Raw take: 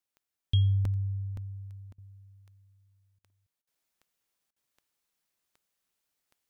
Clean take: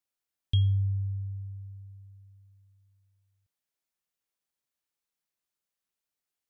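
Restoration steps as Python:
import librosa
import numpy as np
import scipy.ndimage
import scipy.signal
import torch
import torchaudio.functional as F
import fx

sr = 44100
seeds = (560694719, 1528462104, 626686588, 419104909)

y = fx.fix_declick_ar(x, sr, threshold=10.0)
y = fx.fix_interpolate(y, sr, at_s=(0.85, 1.37, 1.92, 3.3, 3.75, 4.67), length_ms=3.0)
y = fx.fix_interpolate(y, sr, at_s=(1.93, 3.19, 3.62, 4.51), length_ms=50.0)
y = fx.fix_level(y, sr, at_s=3.64, step_db=-6.5)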